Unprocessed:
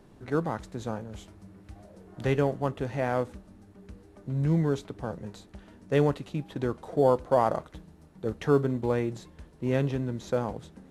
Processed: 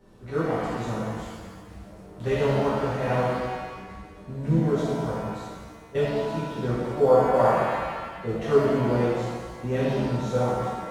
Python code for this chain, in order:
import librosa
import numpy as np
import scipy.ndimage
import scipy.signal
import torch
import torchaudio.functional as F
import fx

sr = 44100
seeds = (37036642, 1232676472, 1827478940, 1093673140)

y = fx.level_steps(x, sr, step_db=22, at=(5.45, 6.2))
y = fx.rev_shimmer(y, sr, seeds[0], rt60_s=1.5, semitones=7, shimmer_db=-8, drr_db=-11.0)
y = y * librosa.db_to_amplitude(-8.0)